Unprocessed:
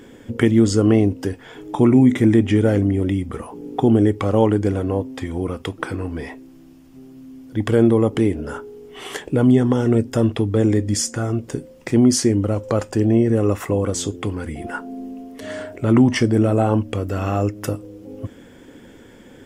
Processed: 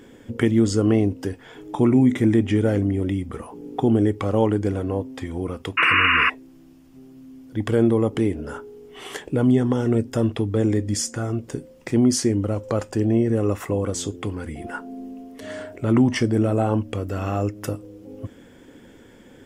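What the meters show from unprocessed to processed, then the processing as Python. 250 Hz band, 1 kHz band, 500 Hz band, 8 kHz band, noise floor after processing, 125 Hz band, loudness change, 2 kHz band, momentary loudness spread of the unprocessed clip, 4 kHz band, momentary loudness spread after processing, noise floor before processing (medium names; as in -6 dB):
-3.5 dB, 0.0 dB, -3.5 dB, -3.5 dB, -49 dBFS, -3.5 dB, -3.0 dB, +6.5 dB, 17 LU, +1.0 dB, 17 LU, -45 dBFS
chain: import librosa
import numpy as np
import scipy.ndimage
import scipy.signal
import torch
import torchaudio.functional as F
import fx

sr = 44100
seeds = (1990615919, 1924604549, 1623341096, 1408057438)

y = fx.spec_paint(x, sr, seeds[0], shape='noise', start_s=5.77, length_s=0.53, low_hz=990.0, high_hz=2900.0, level_db=-14.0)
y = y * librosa.db_to_amplitude(-3.5)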